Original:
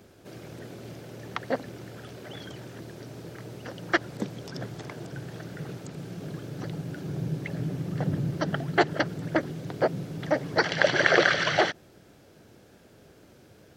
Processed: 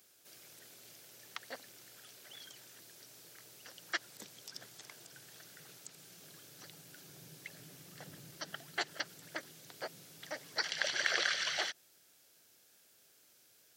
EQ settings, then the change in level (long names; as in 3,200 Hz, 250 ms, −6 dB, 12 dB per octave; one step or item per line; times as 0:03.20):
high-pass filter 73 Hz
first-order pre-emphasis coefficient 0.97
+1.0 dB